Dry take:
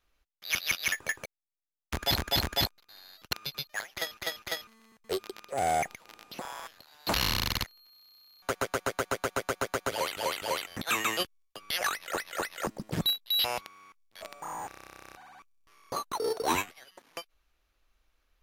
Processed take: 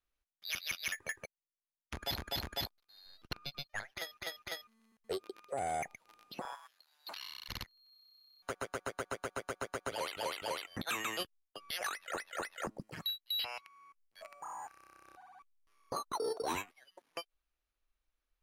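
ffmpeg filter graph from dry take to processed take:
ffmpeg -i in.wav -filter_complex "[0:a]asettb=1/sr,asplit=3[link_01][link_02][link_03];[link_01]atrim=end=3.064[link_04];[link_02]atrim=start=3.06:end=3.96,asetpts=PTS-STARTPTS,afade=type=in:duration=0.004:curve=qsin,afade=type=out:start_time=0.896:duration=0.004:curve=qsin,aeval=exprs='if(lt(val(0),0),0.447*val(0),val(0))':channel_layout=same,highshelf=frequency=7000:gain=-10,acontrast=28[link_05];[link_03]atrim=start=3.956[link_06];[link_04][link_05]acrossfade=duration=0.004:curve1=hsin:curve2=qsin[link_07];[link_07][link_06]acrossfade=duration=0.004:curve1=qsin:curve2=hsin,asettb=1/sr,asplit=3[link_08][link_09][link_10];[link_08]atrim=end=6.554[link_11];[link_09]atrim=start=6.55:end=7.49,asetpts=PTS-STARTPTS,afade=type=in:duration=0.004:curve=qsin,afade=type=out:start_time=0.936:duration=0.004:curve=qsin,highpass=frequency=1100:poles=1,acompressor=threshold=-47dB:ratio=2:attack=3.2:release=140:knee=1:detection=peak[link_12];[link_10]atrim=start=7.486[link_13];[link_11][link_12]acrossfade=duration=0.004:curve1=hsin:curve2=qsin[link_14];[link_14][link_13]acrossfade=duration=0.004:curve1=qsin:curve2=hsin,asettb=1/sr,asplit=3[link_15][link_16][link_17];[link_15]atrim=end=12.804[link_18];[link_16]atrim=start=12.8:end=15.06,asetpts=PTS-STARTPTS,afade=type=in:duration=0.004:curve=qsin,afade=type=out:start_time=2.256:duration=0.004:curve=qsin,bandreject=frequency=3600:width=5.9,acrossover=split=940|2300|5300[link_19][link_20][link_21][link_22];[link_19]acompressor=threshold=-51dB:ratio=3[link_23];[link_20]acompressor=threshold=-43dB:ratio=3[link_24];[link_21]acompressor=threshold=-34dB:ratio=3[link_25];[link_22]acompressor=threshold=-49dB:ratio=3[link_26];[link_23][link_24][link_25][link_26]amix=inputs=4:normalize=0[link_27];[link_17]atrim=start=15.056[link_28];[link_18][link_27]acrossfade=duration=0.004:curve1=hsin:curve2=qsin[link_29];[link_29][link_28]acrossfade=duration=0.004:curve1=qsin:curve2=hsin,afftdn=noise_reduction=13:noise_floor=-44,equalizer=frequency=9800:width=6.4:gain=6.5,alimiter=level_in=2dB:limit=-24dB:level=0:latency=1:release=323,volume=-2dB,volume=-1.5dB" out.wav

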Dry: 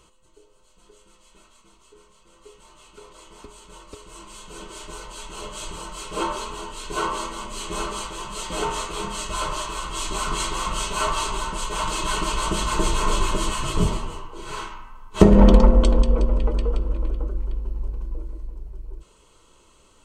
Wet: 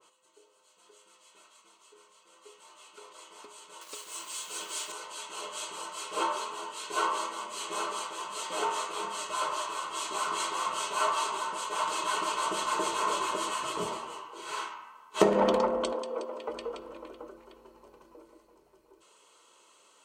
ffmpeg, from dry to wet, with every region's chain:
ffmpeg -i in.wav -filter_complex "[0:a]asettb=1/sr,asplit=3[link_01][link_02][link_03];[link_01]atrim=end=3.814[link_04];[link_02]atrim=start=3.81:end=4.92,asetpts=PTS-STARTPTS,afade=type=in:duration=0.004:curve=qsin,afade=type=out:start_time=1.106:duration=0.004:curve=qsin,highshelf=frequency=2300:gain=9.5,aeval=exprs='val(0)*gte(abs(val(0)),0.00631)':channel_layout=same[link_05];[link_03]atrim=start=4.916[link_06];[link_04][link_05]acrossfade=duration=0.004:curve1=hsin:curve2=qsin[link_07];[link_07][link_06]acrossfade=duration=0.004:curve1=qsin:curve2=hsin,asettb=1/sr,asplit=3[link_08][link_09][link_10];[link_08]atrim=end=15.924[link_11];[link_09]atrim=start=15.92:end=16.48,asetpts=PTS-STARTPTS,afade=type=in:duration=0.004:curve=qsin,afade=type=out:start_time=0.556:duration=0.004:curve=qsin,highpass=310,equalizer=frequency=2200:width_type=o:width=1.5:gain=-3[link_12];[link_10]atrim=start=16.476[link_13];[link_11][link_12]acrossfade=duration=0.004:curve1=hsin:curve2=qsin[link_14];[link_14][link_13]acrossfade=duration=0.004:curve1=qsin:curve2=hsin,highpass=500,adynamicequalizer=threshold=0.0112:dfrequency=1700:dqfactor=0.7:tfrequency=1700:tqfactor=0.7:attack=5:release=100:ratio=0.375:range=2.5:mode=cutabove:tftype=highshelf,volume=-2dB" out.wav

